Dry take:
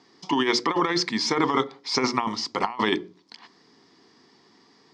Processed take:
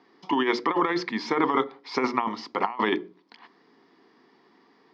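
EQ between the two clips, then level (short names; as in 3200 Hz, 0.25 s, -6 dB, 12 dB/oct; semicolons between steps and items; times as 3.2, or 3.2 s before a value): HPF 210 Hz 12 dB/oct; LPF 2600 Hz 12 dB/oct; 0.0 dB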